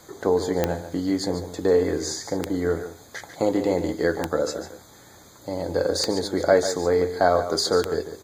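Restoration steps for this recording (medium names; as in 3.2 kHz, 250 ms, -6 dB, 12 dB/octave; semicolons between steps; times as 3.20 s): de-click; inverse comb 145 ms -11 dB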